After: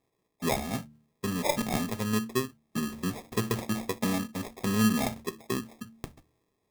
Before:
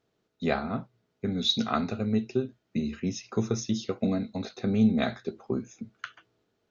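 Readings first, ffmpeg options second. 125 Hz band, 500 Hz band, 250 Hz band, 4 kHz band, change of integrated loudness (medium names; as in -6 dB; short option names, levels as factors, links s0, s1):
-1.5 dB, -2.0 dB, -2.5 dB, -5.0 dB, -1.5 dB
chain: -af "acrusher=samples=30:mix=1:aa=0.000001,highshelf=f=6200:g=6,bandreject=f=75.35:t=h:w=4,bandreject=f=150.7:t=h:w=4,bandreject=f=226.05:t=h:w=4,bandreject=f=301.4:t=h:w=4,volume=0.841"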